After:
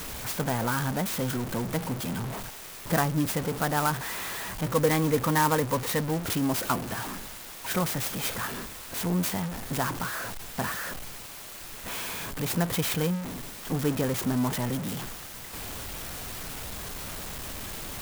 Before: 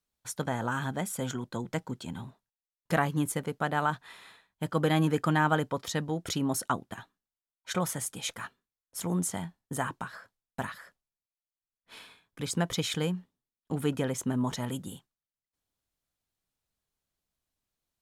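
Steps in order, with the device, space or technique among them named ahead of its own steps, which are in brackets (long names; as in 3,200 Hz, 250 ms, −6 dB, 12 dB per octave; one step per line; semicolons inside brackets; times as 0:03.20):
0:04.66–0:06.04: EQ curve with evenly spaced ripples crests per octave 0.99, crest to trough 10 dB
early CD player with a faulty converter (converter with a step at zero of −29 dBFS; converter with an unsteady clock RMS 0.058 ms)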